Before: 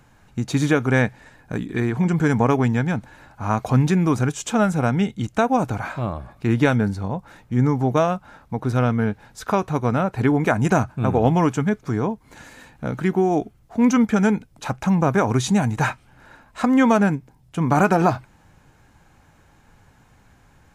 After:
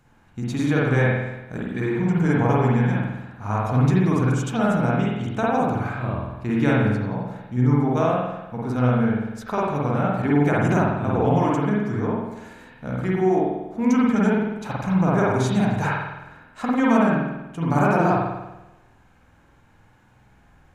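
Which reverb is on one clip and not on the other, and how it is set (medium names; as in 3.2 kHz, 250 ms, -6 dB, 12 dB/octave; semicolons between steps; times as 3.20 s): spring tank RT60 1 s, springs 48 ms, chirp 40 ms, DRR -5 dB; trim -7.5 dB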